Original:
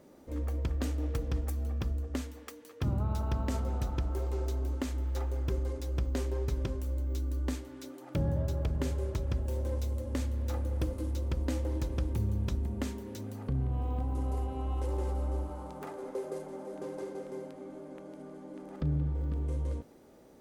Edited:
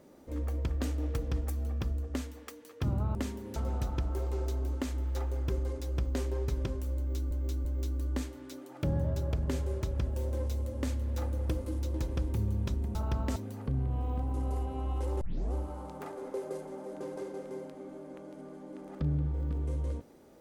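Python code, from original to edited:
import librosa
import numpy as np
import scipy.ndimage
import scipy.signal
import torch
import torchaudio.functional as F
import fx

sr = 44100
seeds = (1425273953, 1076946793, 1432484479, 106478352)

y = fx.edit(x, sr, fx.swap(start_s=3.15, length_s=0.41, other_s=12.76, other_length_s=0.41),
    fx.repeat(start_s=6.97, length_s=0.34, count=3),
    fx.cut(start_s=11.26, length_s=0.49),
    fx.tape_start(start_s=15.02, length_s=0.32), tone=tone)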